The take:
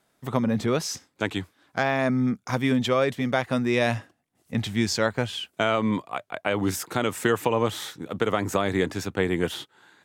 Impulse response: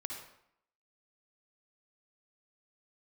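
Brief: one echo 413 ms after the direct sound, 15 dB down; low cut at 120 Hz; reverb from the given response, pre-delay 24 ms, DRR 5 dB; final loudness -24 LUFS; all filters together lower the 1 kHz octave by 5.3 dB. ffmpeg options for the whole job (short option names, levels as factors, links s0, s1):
-filter_complex "[0:a]highpass=120,equalizer=f=1000:t=o:g=-7.5,aecho=1:1:413:0.178,asplit=2[s0][s1];[1:a]atrim=start_sample=2205,adelay=24[s2];[s1][s2]afir=irnorm=-1:irlink=0,volume=0.596[s3];[s0][s3]amix=inputs=2:normalize=0,volume=1.33"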